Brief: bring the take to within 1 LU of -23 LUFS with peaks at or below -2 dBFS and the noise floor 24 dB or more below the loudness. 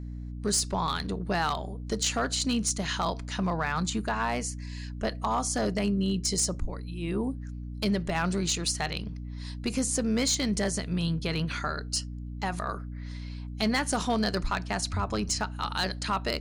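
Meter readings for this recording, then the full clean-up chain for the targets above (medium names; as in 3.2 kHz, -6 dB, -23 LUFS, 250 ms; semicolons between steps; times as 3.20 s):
clipped samples 0.4%; clipping level -19.5 dBFS; hum 60 Hz; highest harmonic 300 Hz; hum level -35 dBFS; loudness -29.5 LUFS; peak level -19.5 dBFS; loudness target -23.0 LUFS
-> clip repair -19.5 dBFS; hum notches 60/120/180/240/300 Hz; trim +6.5 dB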